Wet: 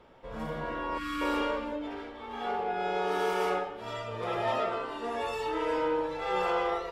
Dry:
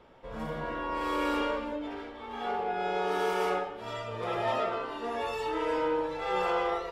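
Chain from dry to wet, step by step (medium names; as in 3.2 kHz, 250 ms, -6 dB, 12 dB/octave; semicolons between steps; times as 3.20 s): 0.98–1.21 s: time-frequency box 340–1100 Hz -24 dB; 4.69–5.38 s: peaking EQ 8.2 kHz +6.5 dB 0.26 oct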